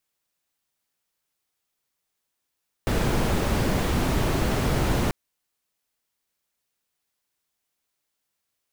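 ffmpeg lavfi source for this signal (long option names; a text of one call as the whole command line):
ffmpeg -f lavfi -i "anoisesrc=color=brown:amplitude=0.351:duration=2.24:sample_rate=44100:seed=1" out.wav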